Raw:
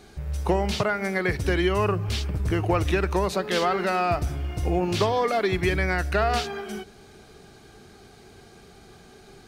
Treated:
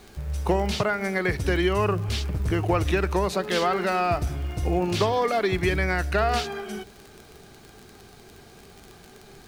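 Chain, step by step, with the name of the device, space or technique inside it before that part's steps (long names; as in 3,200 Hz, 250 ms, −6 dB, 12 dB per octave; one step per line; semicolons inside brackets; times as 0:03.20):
vinyl LP (surface crackle 34 per second −32 dBFS; pink noise bed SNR 31 dB)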